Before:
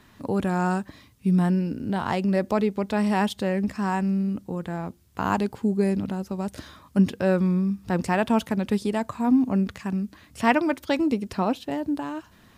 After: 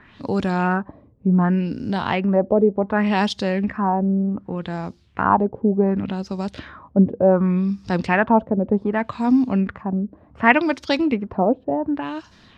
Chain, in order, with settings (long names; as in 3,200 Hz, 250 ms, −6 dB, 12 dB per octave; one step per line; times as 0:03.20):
auto-filter low-pass sine 0.67 Hz 520–5,400 Hz
level +3 dB